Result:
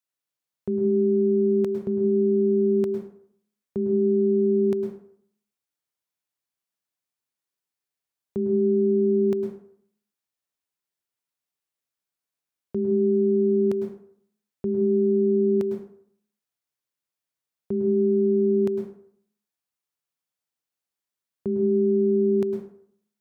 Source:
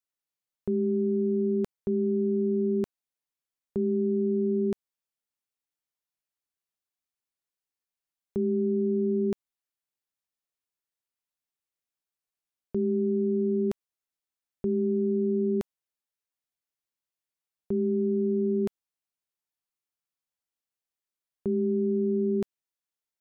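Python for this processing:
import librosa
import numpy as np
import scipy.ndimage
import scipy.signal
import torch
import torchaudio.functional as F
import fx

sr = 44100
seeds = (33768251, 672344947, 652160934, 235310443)

y = scipy.signal.sosfilt(scipy.signal.butter(2, 76.0, 'highpass', fs=sr, output='sos'), x)
y = fx.rev_plate(y, sr, seeds[0], rt60_s=0.62, hf_ratio=0.6, predelay_ms=95, drr_db=5.0)
y = y * 10.0 ** (1.5 / 20.0)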